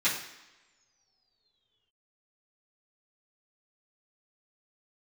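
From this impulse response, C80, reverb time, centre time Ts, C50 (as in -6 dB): 9.0 dB, no single decay rate, 34 ms, 6.0 dB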